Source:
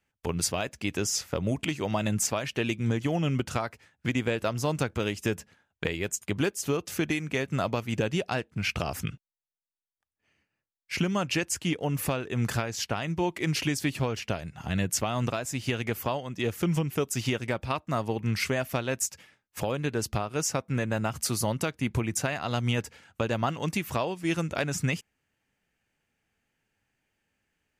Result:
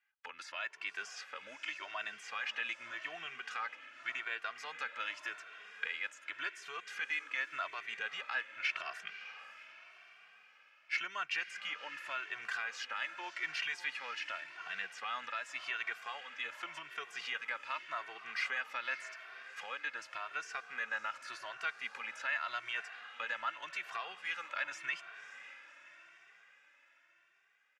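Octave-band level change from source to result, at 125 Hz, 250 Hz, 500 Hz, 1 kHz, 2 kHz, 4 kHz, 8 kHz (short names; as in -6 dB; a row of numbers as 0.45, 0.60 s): under -40 dB, -35.0 dB, -22.5 dB, -8.0 dB, -1.5 dB, -8.0 dB, -22.5 dB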